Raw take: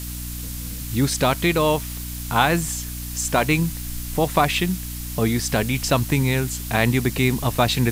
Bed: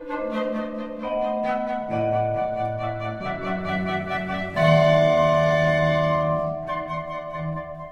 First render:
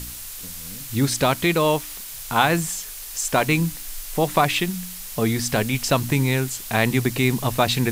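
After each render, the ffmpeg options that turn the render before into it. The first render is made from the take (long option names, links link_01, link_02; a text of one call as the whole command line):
ffmpeg -i in.wav -af "bandreject=frequency=60:width_type=h:width=4,bandreject=frequency=120:width_type=h:width=4,bandreject=frequency=180:width_type=h:width=4,bandreject=frequency=240:width_type=h:width=4,bandreject=frequency=300:width_type=h:width=4" out.wav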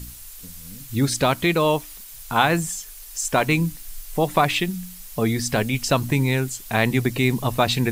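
ffmpeg -i in.wav -af "afftdn=noise_reduction=8:noise_floor=-36" out.wav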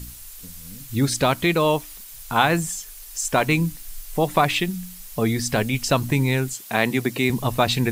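ffmpeg -i in.wav -filter_complex "[0:a]asettb=1/sr,asplit=3[link_01][link_02][link_03];[link_01]atrim=end=6.534[link_04];[link_02]atrim=start=6.53:end=7.3,asetpts=PTS-STARTPTS,afade=type=in:duration=0.004:curve=qsin,afade=type=out:start_time=0.766:duration=0.004:curve=qsin,highpass=170[link_05];[link_03]atrim=start=7.296[link_06];[link_04][link_05]acrossfade=duration=0.004:curve1=hsin:curve2=qsin[link_07];[link_07][link_06]acrossfade=duration=0.004:curve1=qsin:curve2=hsin" out.wav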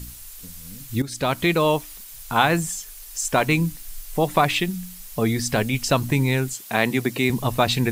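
ffmpeg -i in.wav -filter_complex "[0:a]asplit=2[link_01][link_02];[link_01]atrim=end=1.02,asetpts=PTS-STARTPTS,afade=type=out:start_time=1.016:duration=0.004:curve=hsin:silence=0.16788[link_03];[link_02]atrim=start=1.02,asetpts=PTS-STARTPTS,afade=type=in:duration=0.4:silence=0.16788[link_04];[link_03][link_04]concat=n=2:v=0:a=1" out.wav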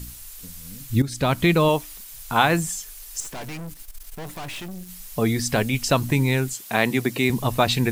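ffmpeg -i in.wav -filter_complex "[0:a]asettb=1/sr,asplit=3[link_01][link_02][link_03];[link_01]atrim=end=0.904[link_04];[link_02]atrim=start=0.9:end=1.69,asetpts=PTS-STARTPTS,afade=type=in:duration=0.004:curve=qsin,afade=type=out:start_time=0.786:duration=0.004:curve=qsin,bass=frequency=250:gain=6,treble=frequency=4000:gain=-1[link_05];[link_03]atrim=start=1.686[link_06];[link_04][link_05]acrossfade=duration=0.004:curve1=hsin:curve2=qsin[link_07];[link_07][link_06]acrossfade=duration=0.004:curve1=qsin:curve2=hsin,asettb=1/sr,asplit=3[link_08][link_09][link_10];[link_08]atrim=end=3.204[link_11];[link_09]atrim=start=3.2:end=4.89,asetpts=PTS-STARTPTS,afade=type=in:duration=0.004:curve=qsin,afade=type=out:start_time=1.686:duration=0.004:curve=qsin,aeval=exprs='(tanh(44.7*val(0)+0.6)-tanh(0.6))/44.7':channel_layout=same[link_12];[link_10]atrim=start=4.886[link_13];[link_11][link_12]acrossfade=duration=0.004:curve1=hsin:curve2=qsin[link_14];[link_14][link_13]acrossfade=duration=0.004:curve1=qsin:curve2=hsin" out.wav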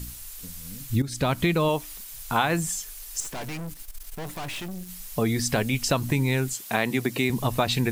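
ffmpeg -i in.wav -af "acompressor=threshold=-21dB:ratio=2.5" out.wav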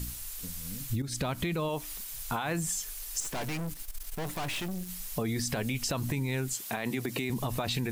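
ffmpeg -i in.wav -af "alimiter=limit=-18.5dB:level=0:latency=1:release=20,acompressor=threshold=-28dB:ratio=6" out.wav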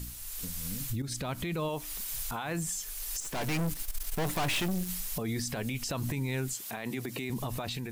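ffmpeg -i in.wav -af "alimiter=level_in=6dB:limit=-24dB:level=0:latency=1:release=439,volume=-6dB,dynaudnorm=framelen=150:gausssize=5:maxgain=5dB" out.wav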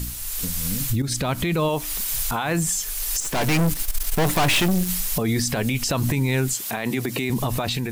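ffmpeg -i in.wav -af "volume=11dB" out.wav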